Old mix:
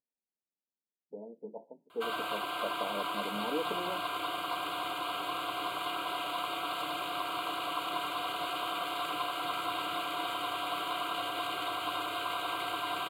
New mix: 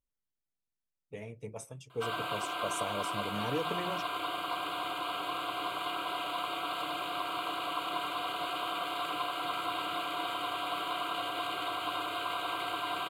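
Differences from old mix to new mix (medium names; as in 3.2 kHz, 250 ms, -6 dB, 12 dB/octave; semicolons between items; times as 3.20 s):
speech: remove brick-wall FIR band-pass 180–1000 Hz; master: add treble shelf 9.1 kHz -4.5 dB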